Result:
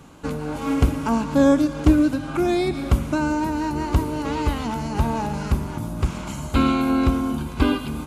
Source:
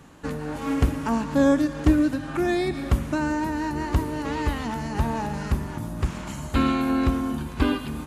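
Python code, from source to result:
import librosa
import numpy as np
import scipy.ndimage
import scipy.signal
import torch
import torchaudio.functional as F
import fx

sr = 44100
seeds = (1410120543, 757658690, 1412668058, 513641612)

y = fx.notch(x, sr, hz=1800.0, q=6.1)
y = F.gain(torch.from_numpy(y), 3.0).numpy()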